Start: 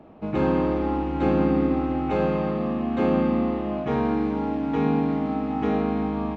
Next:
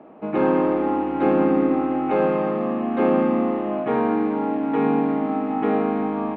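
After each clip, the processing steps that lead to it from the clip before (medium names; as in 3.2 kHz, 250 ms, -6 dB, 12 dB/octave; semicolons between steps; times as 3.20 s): three-band isolator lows -22 dB, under 200 Hz, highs -22 dB, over 2.9 kHz; trim +4.5 dB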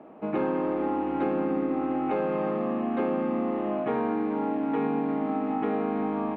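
compression, threshold -21 dBFS, peak gain reduction 7 dB; trim -2.5 dB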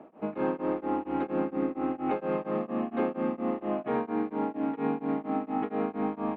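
tremolo of two beating tones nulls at 4.3 Hz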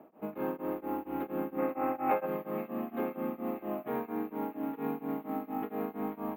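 careless resampling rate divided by 3×, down filtered, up hold; time-frequency box 1.59–2.26 s, 500–2700 Hz +9 dB; feedback echo behind a high-pass 484 ms, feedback 61%, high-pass 2.3 kHz, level -8.5 dB; trim -5.5 dB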